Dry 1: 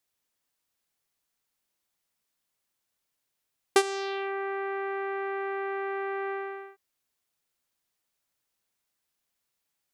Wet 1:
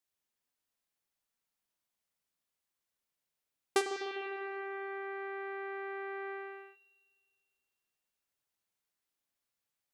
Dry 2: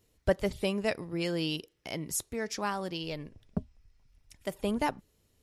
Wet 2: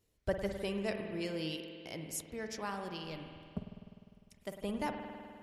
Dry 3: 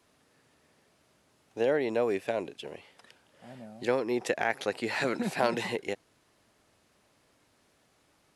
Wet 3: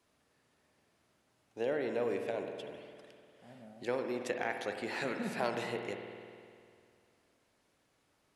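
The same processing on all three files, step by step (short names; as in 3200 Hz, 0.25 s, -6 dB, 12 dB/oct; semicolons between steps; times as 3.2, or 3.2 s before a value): spring tank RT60 2.3 s, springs 50 ms, chirp 55 ms, DRR 4.5 dB; gain -7.5 dB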